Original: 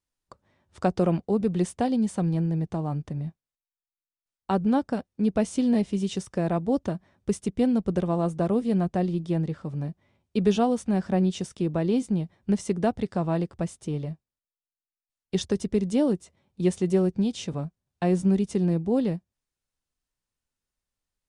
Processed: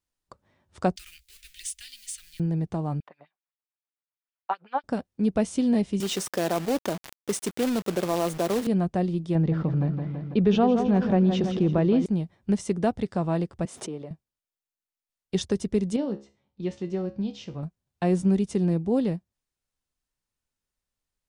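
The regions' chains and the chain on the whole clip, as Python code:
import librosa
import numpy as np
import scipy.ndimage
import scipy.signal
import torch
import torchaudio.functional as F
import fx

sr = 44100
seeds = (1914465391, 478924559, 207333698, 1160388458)

y = fx.chain(x, sr, fx.law_mismatch(coded='mu'),
    fx.cheby2_bandstop(low_hz=110.0, high_hz=950.0, order=4, stop_db=50),
    fx.high_shelf(hz=4700.0, db=5.5), at=(0.96, 2.4))
y = fx.chain(y, sr, fx.filter_lfo_highpass(shape='sine', hz=7.8, low_hz=690.0, high_hz=3900.0, q=1.8),
    fx.air_absorb(metres=390.0), at=(3.0, 4.84))
y = fx.chain(y, sr, fx.highpass(hz=310.0, slope=12),
    fx.quant_companded(bits=4),
    fx.env_flatten(amount_pct=50), at=(6.0, 8.67))
y = fx.chain(y, sr, fx.air_absorb(metres=220.0),
    fx.echo_feedback(ms=165, feedback_pct=52, wet_db=-11.5),
    fx.env_flatten(amount_pct=50), at=(9.35, 12.06))
y = fx.chain(y, sr, fx.highpass(hz=300.0, slope=12),
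    fx.high_shelf(hz=2300.0, db=-10.5),
    fx.pre_swell(db_per_s=73.0), at=(13.65, 14.11))
y = fx.chain(y, sr, fx.lowpass(hz=5600.0, slope=24),
    fx.comb_fb(f0_hz=69.0, decay_s=0.33, harmonics='all', damping=0.0, mix_pct=70), at=(15.96, 17.63))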